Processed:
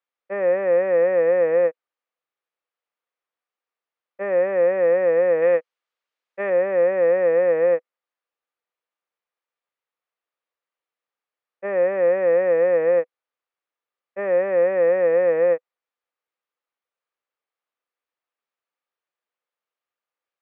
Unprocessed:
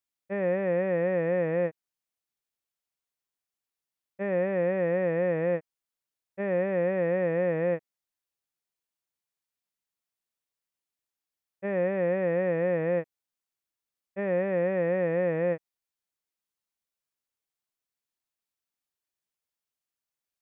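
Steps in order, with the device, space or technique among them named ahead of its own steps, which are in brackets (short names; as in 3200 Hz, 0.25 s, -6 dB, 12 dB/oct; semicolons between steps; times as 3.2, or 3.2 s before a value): 5.42–6.5 high shelf 2100 Hz +9 dB; tin-can telephone (BPF 440–2400 Hz; small resonant body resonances 500/1200 Hz, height 7 dB); gain +6.5 dB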